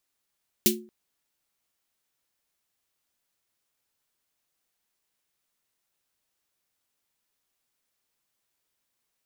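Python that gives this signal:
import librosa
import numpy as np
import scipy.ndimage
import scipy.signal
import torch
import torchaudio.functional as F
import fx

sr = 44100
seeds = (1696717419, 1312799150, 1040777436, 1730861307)

y = fx.drum_snare(sr, seeds[0], length_s=0.23, hz=220.0, second_hz=360.0, noise_db=5.0, noise_from_hz=2500.0, decay_s=0.4, noise_decay_s=0.16)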